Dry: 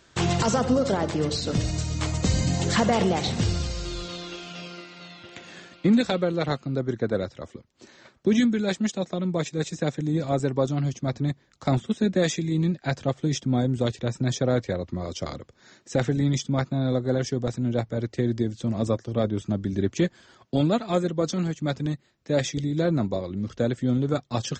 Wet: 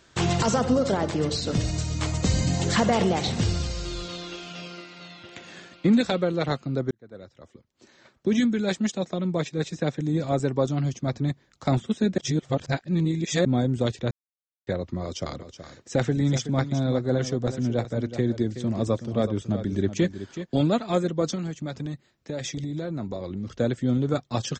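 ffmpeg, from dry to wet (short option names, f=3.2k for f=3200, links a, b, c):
-filter_complex "[0:a]asettb=1/sr,asplit=3[a][b][c];[a]atrim=end=9.404[d];[b]atrim=start=9.4:end=10,asetpts=PTS-STARTPTS,afade=t=in:d=0.004:c=qsin,afade=t=out:st=0.596:d=0.004:c=qsin,equalizer=f=7.4k:t=o:w=0.77:g=-6[e];[c]atrim=start=9.996[f];[d][e]acrossfade=d=0.004:c1=hsin:c2=qsin[g];[g][f]acrossfade=d=0.004:c1=qsin:c2=hsin,asplit=3[h][i][j];[h]afade=t=out:st=15.39:d=0.02[k];[i]aecho=1:1:374:0.266,afade=t=in:st=15.39:d=0.02,afade=t=out:st=20.82:d=0.02[l];[j]afade=t=in:st=20.82:d=0.02[m];[k][l][m]amix=inputs=3:normalize=0,asettb=1/sr,asplit=3[n][o][p];[n]atrim=end=21.354[q];[o]atrim=start=21.35:end=23.48,asetpts=PTS-STARTPTS,afade=t=in:d=0.004:c=qsin,afade=t=out:st=2.126:d=0.004:c=qsin,acompressor=threshold=-27dB:ratio=6:attack=3.2:release=140:knee=1:detection=peak[r];[p]atrim=start=23.476[s];[q][r]acrossfade=d=0.004:c1=hsin:c2=qsin[t];[t][s]acrossfade=d=0.004:c1=qsin:c2=hsin,asplit=6[u][v][w][x][y][z];[u]atrim=end=6.91,asetpts=PTS-STARTPTS,afade=t=out:st=6.906:d=0.004:c=hsin[aa];[v]atrim=start=6.91:end=12.182,asetpts=PTS-STARTPTS,afade=t=in:d=1.76[ab];[w]atrim=start=12.178:end=13.452,asetpts=PTS-STARTPTS,areverse[ac];[x]atrim=start=13.448:end=14.11,asetpts=PTS-STARTPTS,afade=t=out:st=0.658:d=0.004:c=hsin[ad];[y]atrim=start=14.11:end=14.67,asetpts=PTS-STARTPTS,volume=0[ae];[z]atrim=start=14.67,asetpts=PTS-STARTPTS,afade=t=in:d=0.004:c=hsin[af];[aa][ab]concat=n=2:v=0:a=1[ag];[ag][ac]acrossfade=d=0.004:c1=hsin:c2=hsin[ah];[ad][ae][af]concat=n=3:v=0:a=1[ai];[ah][ai]acrossfade=d=0.004:c1=hsin:c2=hsin"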